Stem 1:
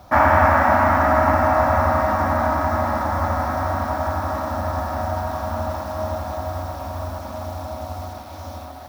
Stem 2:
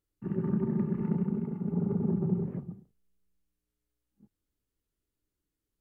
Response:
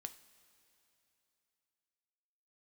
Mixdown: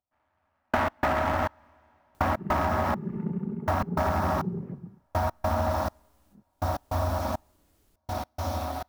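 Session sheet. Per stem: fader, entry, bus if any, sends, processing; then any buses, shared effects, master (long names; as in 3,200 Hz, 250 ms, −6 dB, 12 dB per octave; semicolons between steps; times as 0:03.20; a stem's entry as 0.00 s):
+2.5 dB, 0.00 s, send −16 dB, asymmetric clip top −20.5 dBFS; upward compression, threshold −31 dBFS; gate pattern ".....x.xxx" 102 BPM −60 dB
−1.5 dB, 2.15 s, no send, upward compression, threshold −47 dBFS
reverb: on, pre-delay 3 ms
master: downward compressor 12 to 1, threshold −22 dBFS, peak gain reduction 11.5 dB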